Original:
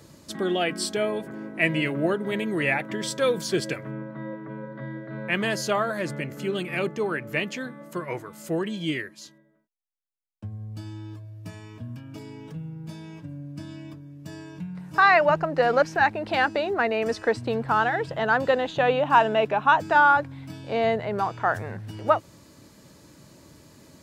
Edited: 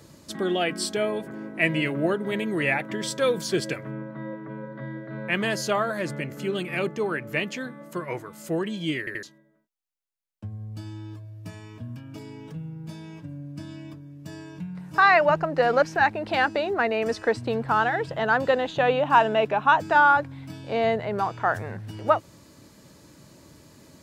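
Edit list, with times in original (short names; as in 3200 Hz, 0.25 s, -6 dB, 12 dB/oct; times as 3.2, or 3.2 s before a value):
8.99 stutter in place 0.08 s, 3 plays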